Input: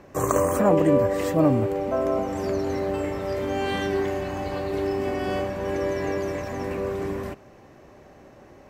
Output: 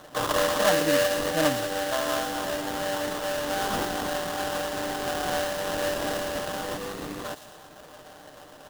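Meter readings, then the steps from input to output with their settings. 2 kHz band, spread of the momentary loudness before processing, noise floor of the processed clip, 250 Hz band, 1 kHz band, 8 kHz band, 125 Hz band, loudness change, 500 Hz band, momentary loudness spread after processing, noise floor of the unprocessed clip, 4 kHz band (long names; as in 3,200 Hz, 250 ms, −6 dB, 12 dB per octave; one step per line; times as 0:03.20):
+5.0 dB, 10 LU, −48 dBFS, −7.0 dB, +0.5 dB, +6.5 dB, −10.0 dB, −2.0 dB, −3.5 dB, 19 LU, −50 dBFS, +10.0 dB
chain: meter weighting curve A
time-frequency box erased 0:06.78–0:07.24, 500–1,100 Hz
parametric band 370 Hz −14 dB 0.3 octaves
comb filter 6.6 ms
in parallel at +2 dB: downward compressor, threshold −36 dBFS, peak gain reduction 18.5 dB
on the sum: sample-rate reduction 2,300 Hz, jitter 20%
on a send: delay with a high-pass on its return 114 ms, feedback 54%, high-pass 3,300 Hz, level −7.5 dB
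on the sum: level −2.5 dB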